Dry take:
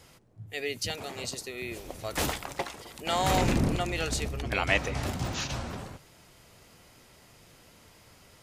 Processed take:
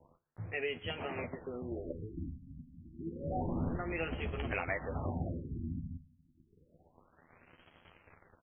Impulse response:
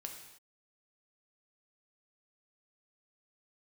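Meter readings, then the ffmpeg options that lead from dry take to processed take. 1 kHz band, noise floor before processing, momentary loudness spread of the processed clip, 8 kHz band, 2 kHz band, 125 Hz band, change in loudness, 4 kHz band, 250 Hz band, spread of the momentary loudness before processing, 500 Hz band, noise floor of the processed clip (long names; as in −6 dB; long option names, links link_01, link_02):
−11.0 dB, −57 dBFS, 12 LU, below −40 dB, −8.5 dB, −6.5 dB, −8.5 dB, −15.5 dB, −6.0 dB, 13 LU, −6.5 dB, −70 dBFS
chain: -filter_complex "[0:a]bandreject=frequency=66.88:width_type=h:width=4,bandreject=frequency=133.76:width_type=h:width=4,bandreject=frequency=200.64:width_type=h:width=4,acompressor=threshold=-37dB:ratio=4,aeval=exprs='val(0)*gte(abs(val(0)),0.00316)':channel_layout=same,asplit=2[link_01][link_02];[link_02]adelay=12,volume=-5dB[link_03];[link_01][link_03]amix=inputs=2:normalize=0,asplit=2[link_04][link_05];[1:a]atrim=start_sample=2205[link_06];[link_05][link_06]afir=irnorm=-1:irlink=0,volume=-9.5dB[link_07];[link_04][link_07]amix=inputs=2:normalize=0,afftfilt=real='re*lt(b*sr/1024,270*pow(3400/270,0.5+0.5*sin(2*PI*0.29*pts/sr)))':imag='im*lt(b*sr/1024,270*pow(3400/270,0.5+0.5*sin(2*PI*0.29*pts/sr)))':win_size=1024:overlap=0.75,volume=1dB"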